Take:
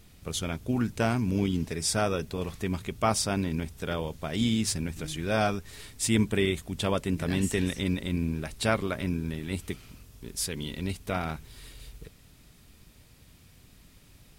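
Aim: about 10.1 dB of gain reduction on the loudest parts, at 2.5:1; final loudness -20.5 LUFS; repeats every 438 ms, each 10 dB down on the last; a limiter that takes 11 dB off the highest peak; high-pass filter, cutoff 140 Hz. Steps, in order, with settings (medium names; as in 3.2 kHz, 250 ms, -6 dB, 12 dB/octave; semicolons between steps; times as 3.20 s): high-pass 140 Hz; compression 2.5:1, threshold -36 dBFS; peak limiter -30 dBFS; feedback delay 438 ms, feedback 32%, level -10 dB; trim +21 dB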